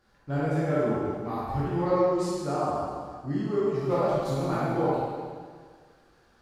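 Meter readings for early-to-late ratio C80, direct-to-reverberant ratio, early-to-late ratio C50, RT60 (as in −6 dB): −1.5 dB, −9.5 dB, −4.5 dB, 1.8 s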